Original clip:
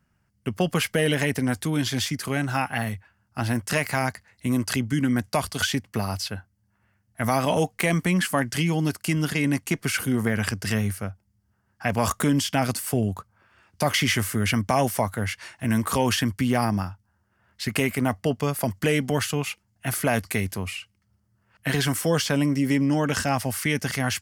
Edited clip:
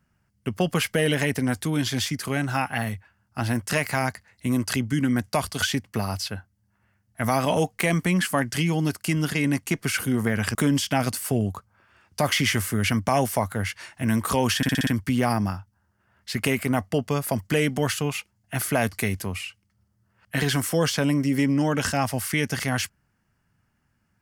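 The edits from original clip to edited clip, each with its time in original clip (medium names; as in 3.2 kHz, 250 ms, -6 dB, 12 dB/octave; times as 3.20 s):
10.55–12.17 s: delete
16.19 s: stutter 0.06 s, 6 plays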